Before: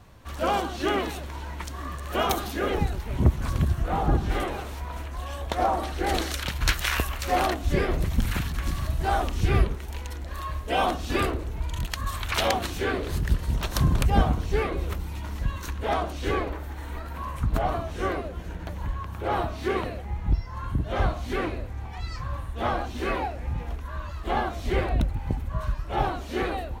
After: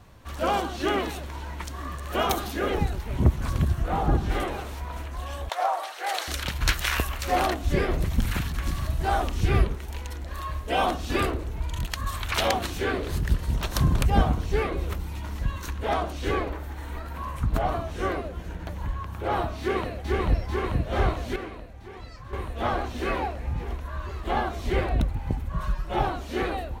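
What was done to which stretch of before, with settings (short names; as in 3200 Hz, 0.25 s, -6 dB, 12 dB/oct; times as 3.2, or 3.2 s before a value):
5.49–6.28 HPF 610 Hz 24 dB/oct
19.6–20.11 echo throw 0.44 s, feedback 80%, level -1 dB
21.36–22.33 gain -9 dB
25.53–25.99 comb 5.5 ms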